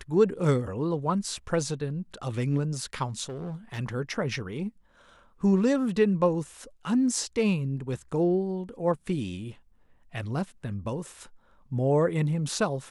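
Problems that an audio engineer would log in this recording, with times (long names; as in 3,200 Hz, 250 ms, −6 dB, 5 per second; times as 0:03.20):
0:03.29–0:03.79: clipping −31.5 dBFS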